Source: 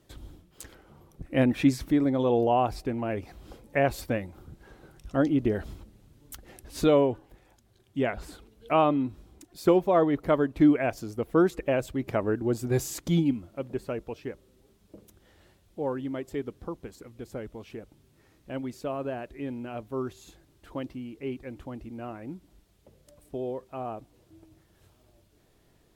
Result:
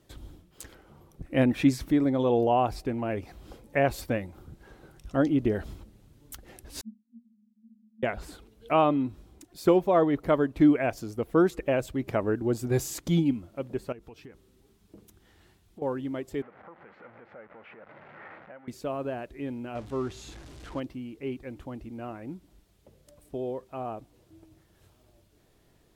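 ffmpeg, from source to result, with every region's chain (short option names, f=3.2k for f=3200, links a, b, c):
-filter_complex "[0:a]asettb=1/sr,asplit=3[a][b][c];[a]atrim=end=6.814[d];[b]atrim=start=6.81:end=8.03,asetpts=PTS-STARTPTS,afade=t=in:d=0.004:c=qsin,afade=t=out:st=1.216:d=0.004:c=qsin,aeval=exprs='val(0)+0.5*0.0126*sgn(val(0))':c=same,asuperpass=centerf=220:order=12:qfactor=7.6[e];[c]atrim=start=8.026[f];[d][e]acrossfade=d=0.004:c1=hsin:c2=qsin[g];[g][f]acrossfade=d=0.004:c1=qsin:c2=hsin,asettb=1/sr,asplit=3[h][i][j];[h]atrim=end=13.924[k];[i]atrim=start=13.92:end=15.82,asetpts=PTS-STARTPTS,afade=t=in:d=0.004:c=qsin,afade=t=out:st=1.896:d=0.004:c=qsin,equalizer=f=560:t=o:w=0.26:g=-12,acompressor=threshold=-42dB:ratio=16:attack=3.2:release=140:knee=1:detection=peak[l];[j]atrim=start=15.816[m];[k][l]acrossfade=d=0.004:c1=hsin:c2=qsin[n];[n][m]acrossfade=d=0.004:c1=qsin:c2=hsin,asettb=1/sr,asplit=3[o][p][q];[o]atrim=end=16.424[r];[p]atrim=start=16.42:end=18.68,asetpts=PTS-STARTPTS,afade=t=in:d=0.004:c=qsin,afade=t=out:st=2.256:d=0.004:c=qsin,aeval=exprs='val(0)+0.5*0.01*sgn(val(0))':c=same,acompressor=threshold=-44dB:ratio=5:attack=3.2:release=140:knee=1:detection=peak,highpass=260,equalizer=f=280:t=q:w=4:g=-9,equalizer=f=390:t=q:w=4:g=-7,equalizer=f=570:t=q:w=4:g=4,equalizer=f=820:t=q:w=4:g=5,equalizer=f=1.4k:t=q:w=4:g=7,equalizer=f=2k:t=q:w=4:g=6,lowpass=f=2.2k:w=0.5412,lowpass=f=2.2k:w=1.3066[s];[q]atrim=start=18.676[t];[r][s]acrossfade=d=0.004:c1=hsin:c2=qsin[u];[u][t]acrossfade=d=0.004:c1=qsin:c2=hsin,asettb=1/sr,asplit=3[v][w][x];[v]atrim=end=19.754[y];[w]atrim=start=19.75:end=20.8,asetpts=PTS-STARTPTS,afade=t=in:d=0.004:c=qsin,afade=t=out:st=1.046:d=0.004:c=qsin,aeval=exprs='val(0)+0.5*0.00708*sgn(val(0))':c=same,lowpass=7.3k,aeval=exprs='val(0)+0.00251*(sin(2*PI*60*n/s)+sin(2*PI*2*60*n/s)/2+sin(2*PI*3*60*n/s)/3+sin(2*PI*4*60*n/s)/4+sin(2*PI*5*60*n/s)/5)':c=same[z];[x]atrim=start=20.796[aa];[y][z]acrossfade=d=0.004:c1=hsin:c2=qsin[ab];[ab][aa]acrossfade=d=0.004:c1=qsin:c2=hsin"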